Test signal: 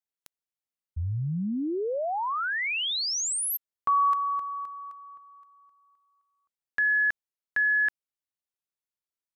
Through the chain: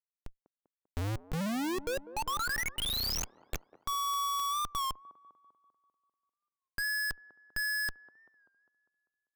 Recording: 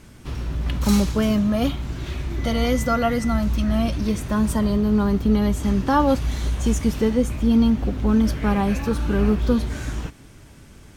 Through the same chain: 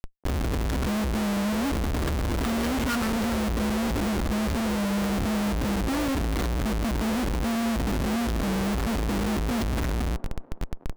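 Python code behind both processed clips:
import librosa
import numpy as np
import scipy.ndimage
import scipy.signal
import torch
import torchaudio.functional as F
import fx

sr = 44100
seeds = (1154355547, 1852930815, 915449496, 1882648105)

y = fx.high_shelf(x, sr, hz=7200.0, db=-10.5)
y = fx.hum_notches(y, sr, base_hz=60, count=3)
y = y + 0.79 * np.pad(y, (int(3.6 * sr / 1000.0), 0))[:len(y)]
y = fx.dynamic_eq(y, sr, hz=1100.0, q=0.77, threshold_db=-32.0, ratio=8.0, max_db=-3)
y = fx.over_compress(y, sr, threshold_db=-22.0, ratio=-1.0)
y = 10.0 ** (-17.0 / 20.0) * np.tanh(y / 10.0 ** (-17.0 / 20.0))
y = fx.fixed_phaser(y, sr, hz=2500.0, stages=6)
y = fx.cheby_harmonics(y, sr, harmonics=(7,), levels_db=(-43,), full_scale_db=-17.0)
y = fx.schmitt(y, sr, flips_db=-34.0)
y = fx.echo_wet_bandpass(y, sr, ms=197, feedback_pct=54, hz=520.0, wet_db=-14.0)
y = fx.record_warp(y, sr, rpm=33.33, depth_cents=100.0)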